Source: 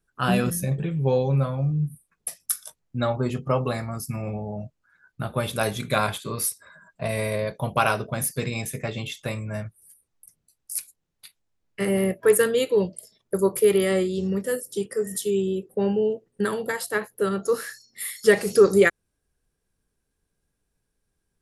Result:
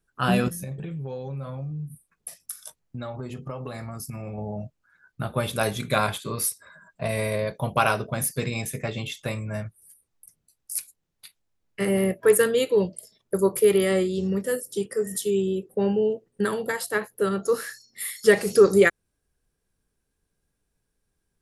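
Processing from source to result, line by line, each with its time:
0.48–4.38 compressor 5:1, threshold -31 dBFS

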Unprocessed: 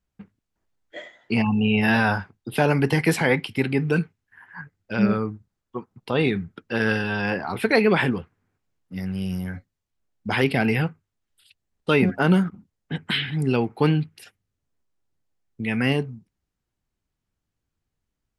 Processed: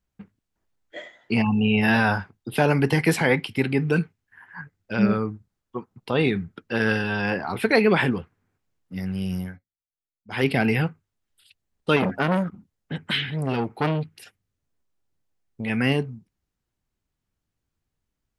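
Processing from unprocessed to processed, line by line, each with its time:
3.45–6.3 short-mantissa float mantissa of 8-bit
9.41–10.46 dip -22 dB, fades 0.18 s
11.96–15.7 core saturation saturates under 1000 Hz

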